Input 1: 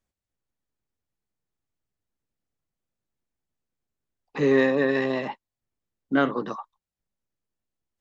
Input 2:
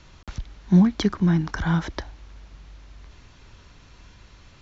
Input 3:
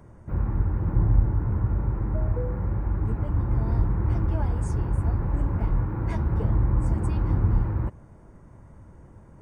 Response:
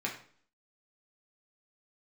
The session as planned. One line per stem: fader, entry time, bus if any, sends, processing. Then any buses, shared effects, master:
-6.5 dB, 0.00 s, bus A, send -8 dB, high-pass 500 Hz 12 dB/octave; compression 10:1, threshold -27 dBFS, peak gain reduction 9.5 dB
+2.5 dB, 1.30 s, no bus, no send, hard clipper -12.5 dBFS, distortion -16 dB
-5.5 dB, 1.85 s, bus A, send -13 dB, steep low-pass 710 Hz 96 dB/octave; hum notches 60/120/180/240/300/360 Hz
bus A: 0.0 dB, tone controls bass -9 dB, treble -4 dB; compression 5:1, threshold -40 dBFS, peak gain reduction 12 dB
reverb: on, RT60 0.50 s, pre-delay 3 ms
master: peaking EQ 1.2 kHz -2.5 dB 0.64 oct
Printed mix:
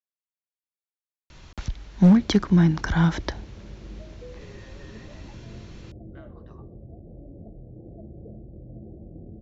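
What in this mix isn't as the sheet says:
stem 1 -6.5 dB -> -17.5 dB; reverb return -6.5 dB

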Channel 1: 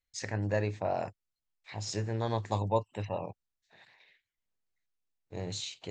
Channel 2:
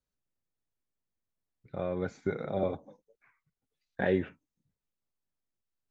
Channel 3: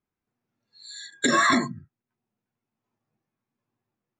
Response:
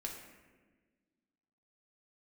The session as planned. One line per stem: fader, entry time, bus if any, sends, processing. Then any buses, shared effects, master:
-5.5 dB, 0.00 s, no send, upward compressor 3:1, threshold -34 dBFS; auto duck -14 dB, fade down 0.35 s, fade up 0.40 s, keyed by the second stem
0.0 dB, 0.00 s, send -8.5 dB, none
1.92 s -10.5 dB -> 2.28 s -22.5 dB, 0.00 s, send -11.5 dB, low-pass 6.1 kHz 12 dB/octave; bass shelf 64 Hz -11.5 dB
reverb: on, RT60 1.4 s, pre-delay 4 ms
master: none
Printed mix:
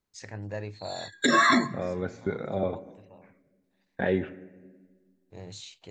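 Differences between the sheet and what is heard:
stem 1: missing upward compressor 3:1, threshold -34 dBFS; stem 3 -10.5 dB -> -1.5 dB

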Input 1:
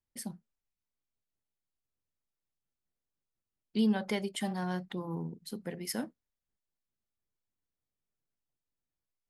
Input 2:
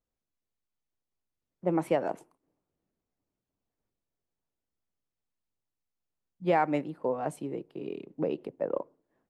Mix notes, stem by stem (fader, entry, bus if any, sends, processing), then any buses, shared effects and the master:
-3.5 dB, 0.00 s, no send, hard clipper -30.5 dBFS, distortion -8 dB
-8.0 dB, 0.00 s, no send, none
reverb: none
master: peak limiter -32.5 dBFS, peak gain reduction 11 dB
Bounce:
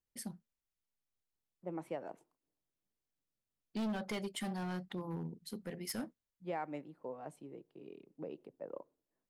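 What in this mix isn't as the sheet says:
stem 2 -8.0 dB -> -14.5 dB; master: missing peak limiter -32.5 dBFS, peak gain reduction 11 dB

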